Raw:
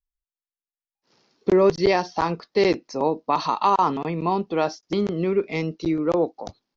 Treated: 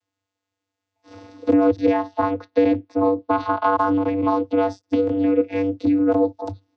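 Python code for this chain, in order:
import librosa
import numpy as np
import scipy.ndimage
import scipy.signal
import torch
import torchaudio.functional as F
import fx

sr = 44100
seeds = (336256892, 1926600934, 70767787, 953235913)

y = fx.lowpass(x, sr, hz=4000.0, slope=24, at=(1.66, 3.77))
y = fx.vocoder(y, sr, bands=16, carrier='square', carrier_hz=97.0)
y = fx.band_squash(y, sr, depth_pct=70)
y = F.gain(torch.from_numpy(y), 3.0).numpy()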